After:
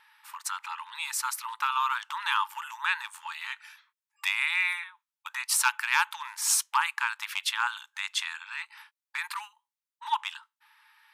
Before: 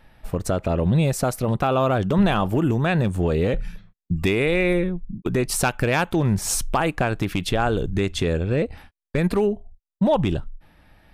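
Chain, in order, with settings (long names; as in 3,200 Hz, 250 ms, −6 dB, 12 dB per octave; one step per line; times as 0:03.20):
linear-phase brick-wall high-pass 840 Hz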